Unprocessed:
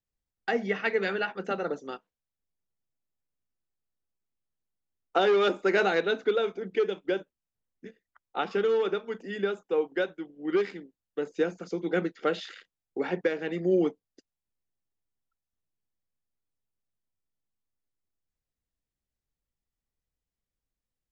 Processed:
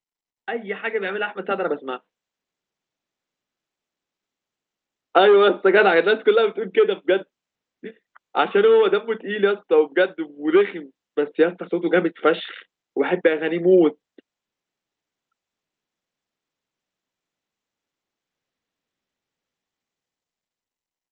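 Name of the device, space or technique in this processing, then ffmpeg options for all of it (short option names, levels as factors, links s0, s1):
Bluetooth headset: -filter_complex "[0:a]asettb=1/sr,asplit=3[s0][s1][s2];[s0]atrim=end=5.274[s3];[s1]atrim=start=5.27:end=5.77,asetpts=PTS-STARTPTS,afade=t=in:d=0.004:c=qsin,afade=t=out:st=0.496:d=0.004:c=qsin,equalizer=f=2400:t=o:w=0.87:g=-6.5[s4];[s2]atrim=start=5.766[s5];[s3][s4]acrossfade=d=0.004:c1=hsin:c2=qsin[s6];[s6][s5]acrossfade=d=0.004:c1=qsin:c2=hsin,highpass=220,dynaudnorm=f=170:g=17:m=3.55,aresample=8000,aresample=44100" -ar 16000 -c:a sbc -b:a 64k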